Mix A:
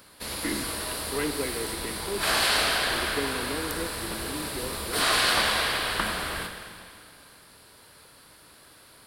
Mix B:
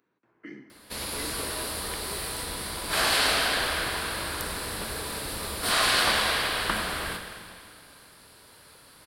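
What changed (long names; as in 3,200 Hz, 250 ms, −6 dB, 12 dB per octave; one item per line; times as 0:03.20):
speech −11.5 dB
background: entry +0.70 s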